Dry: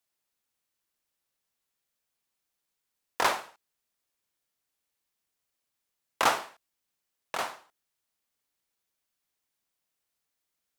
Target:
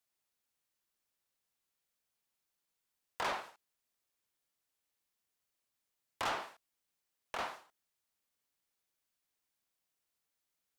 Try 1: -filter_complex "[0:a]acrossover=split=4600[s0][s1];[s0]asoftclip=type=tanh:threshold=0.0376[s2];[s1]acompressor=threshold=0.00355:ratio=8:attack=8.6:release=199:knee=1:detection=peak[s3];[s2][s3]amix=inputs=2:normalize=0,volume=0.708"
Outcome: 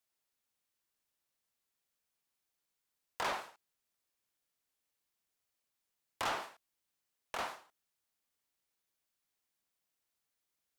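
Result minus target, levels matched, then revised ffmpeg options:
compression: peak gain reduction -5.5 dB
-filter_complex "[0:a]acrossover=split=4600[s0][s1];[s0]asoftclip=type=tanh:threshold=0.0376[s2];[s1]acompressor=threshold=0.00168:ratio=8:attack=8.6:release=199:knee=1:detection=peak[s3];[s2][s3]amix=inputs=2:normalize=0,volume=0.708"

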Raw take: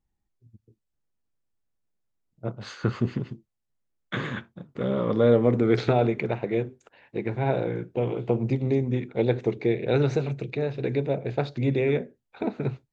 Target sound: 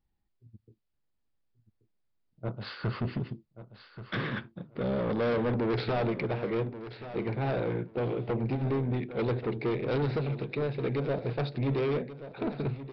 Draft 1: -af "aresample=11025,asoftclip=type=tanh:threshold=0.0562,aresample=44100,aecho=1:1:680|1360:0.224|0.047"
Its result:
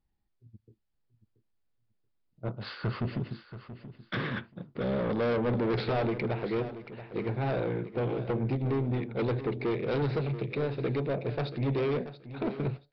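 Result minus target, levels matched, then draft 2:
echo 451 ms early
-af "aresample=11025,asoftclip=type=tanh:threshold=0.0562,aresample=44100,aecho=1:1:1131|2262:0.224|0.047"

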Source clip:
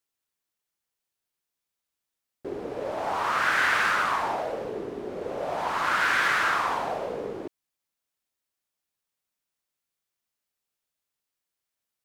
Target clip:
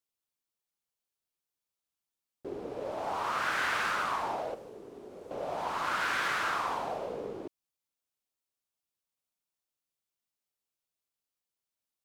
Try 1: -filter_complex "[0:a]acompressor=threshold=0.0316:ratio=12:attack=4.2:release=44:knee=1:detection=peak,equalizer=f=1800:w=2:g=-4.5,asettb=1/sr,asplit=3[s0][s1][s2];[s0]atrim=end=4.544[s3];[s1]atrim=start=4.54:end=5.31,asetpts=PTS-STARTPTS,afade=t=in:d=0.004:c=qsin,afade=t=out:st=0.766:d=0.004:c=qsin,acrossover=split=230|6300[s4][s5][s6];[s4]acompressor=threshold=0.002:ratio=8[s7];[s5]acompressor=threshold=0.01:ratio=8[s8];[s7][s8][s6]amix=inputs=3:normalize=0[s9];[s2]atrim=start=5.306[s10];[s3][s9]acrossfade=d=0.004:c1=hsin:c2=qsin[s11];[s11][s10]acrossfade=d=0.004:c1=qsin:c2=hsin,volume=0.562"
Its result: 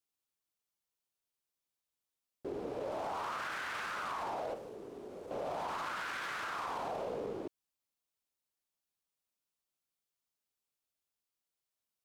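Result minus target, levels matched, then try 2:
compression: peak gain reduction +11.5 dB
-filter_complex "[0:a]equalizer=f=1800:w=2:g=-4.5,asettb=1/sr,asplit=3[s0][s1][s2];[s0]atrim=end=4.544[s3];[s1]atrim=start=4.54:end=5.31,asetpts=PTS-STARTPTS,afade=t=in:d=0.004:c=qsin,afade=t=out:st=0.766:d=0.004:c=qsin,acrossover=split=230|6300[s4][s5][s6];[s4]acompressor=threshold=0.002:ratio=8[s7];[s5]acompressor=threshold=0.01:ratio=8[s8];[s7][s8][s6]amix=inputs=3:normalize=0[s9];[s2]atrim=start=5.306[s10];[s3][s9]acrossfade=d=0.004:c1=hsin:c2=qsin[s11];[s11][s10]acrossfade=d=0.004:c1=qsin:c2=hsin,volume=0.562"

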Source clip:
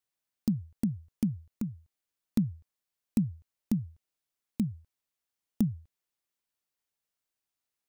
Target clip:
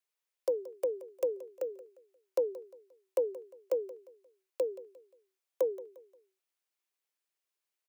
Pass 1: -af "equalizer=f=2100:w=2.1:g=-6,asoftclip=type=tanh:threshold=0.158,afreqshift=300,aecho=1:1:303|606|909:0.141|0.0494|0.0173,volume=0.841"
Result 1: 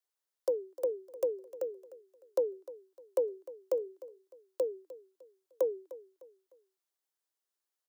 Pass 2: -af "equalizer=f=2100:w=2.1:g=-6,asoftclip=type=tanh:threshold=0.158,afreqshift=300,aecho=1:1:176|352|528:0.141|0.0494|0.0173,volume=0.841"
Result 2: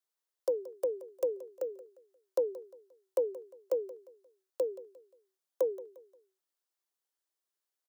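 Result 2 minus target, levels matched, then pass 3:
2 kHz band -3.5 dB
-af "equalizer=f=2100:w=2.1:g=3,asoftclip=type=tanh:threshold=0.158,afreqshift=300,aecho=1:1:176|352|528:0.141|0.0494|0.0173,volume=0.841"

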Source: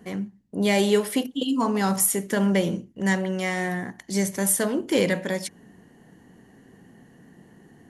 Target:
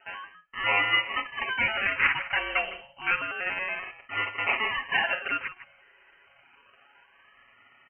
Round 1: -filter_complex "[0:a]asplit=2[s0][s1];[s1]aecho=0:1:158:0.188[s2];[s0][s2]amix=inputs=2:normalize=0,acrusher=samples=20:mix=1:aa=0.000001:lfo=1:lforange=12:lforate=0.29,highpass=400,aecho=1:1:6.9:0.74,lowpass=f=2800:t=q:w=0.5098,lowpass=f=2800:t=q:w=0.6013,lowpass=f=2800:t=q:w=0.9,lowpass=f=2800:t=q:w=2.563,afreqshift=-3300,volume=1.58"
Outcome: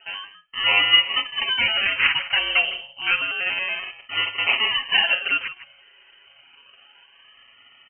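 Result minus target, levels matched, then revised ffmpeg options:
500 Hz band -7.0 dB
-filter_complex "[0:a]asplit=2[s0][s1];[s1]aecho=0:1:158:0.188[s2];[s0][s2]amix=inputs=2:normalize=0,acrusher=samples=20:mix=1:aa=0.000001:lfo=1:lforange=12:lforate=0.29,highpass=1100,aecho=1:1:6.9:0.74,lowpass=f=2800:t=q:w=0.5098,lowpass=f=2800:t=q:w=0.6013,lowpass=f=2800:t=q:w=0.9,lowpass=f=2800:t=q:w=2.563,afreqshift=-3300,volume=1.58"

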